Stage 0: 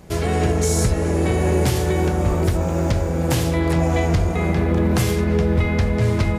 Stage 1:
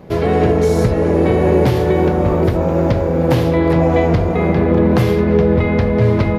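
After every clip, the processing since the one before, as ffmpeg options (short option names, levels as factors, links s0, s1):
-af "equalizer=f=125:t=o:w=1:g=7,equalizer=f=250:t=o:w=1:g=7,equalizer=f=500:t=o:w=1:g=10,equalizer=f=1000:t=o:w=1:g=6,equalizer=f=2000:t=o:w=1:g=4,equalizer=f=4000:t=o:w=1:g=4,equalizer=f=8000:t=o:w=1:g=-12,volume=0.708"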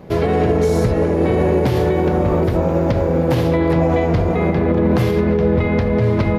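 -af "alimiter=limit=0.422:level=0:latency=1:release=67"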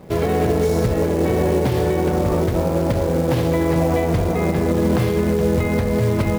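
-af "acrusher=bits=5:mode=log:mix=0:aa=0.000001,volume=0.75"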